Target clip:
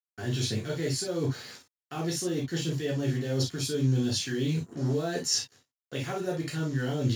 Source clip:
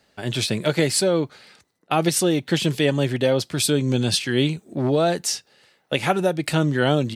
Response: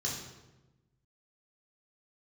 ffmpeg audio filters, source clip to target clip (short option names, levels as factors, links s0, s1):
-filter_complex "[0:a]agate=range=0.0224:threshold=0.00355:ratio=3:detection=peak,highshelf=f=9800:g=3,areverse,acompressor=threshold=0.0251:ratio=10,areverse,acrusher=bits=7:mix=0:aa=0.5[s0];[1:a]atrim=start_sample=2205,atrim=end_sample=3087[s1];[s0][s1]afir=irnorm=-1:irlink=0"